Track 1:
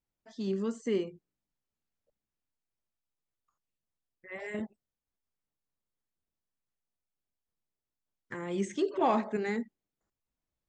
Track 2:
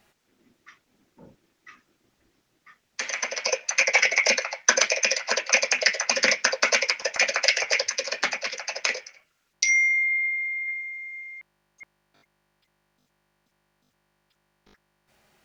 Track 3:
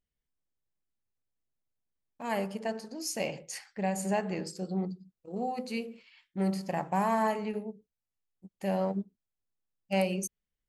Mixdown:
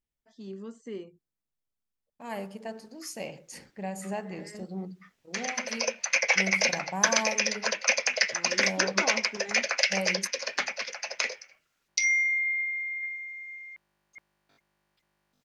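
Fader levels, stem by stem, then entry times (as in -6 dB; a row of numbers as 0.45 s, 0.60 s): -8.5 dB, -4.0 dB, -4.5 dB; 0.00 s, 2.35 s, 0.00 s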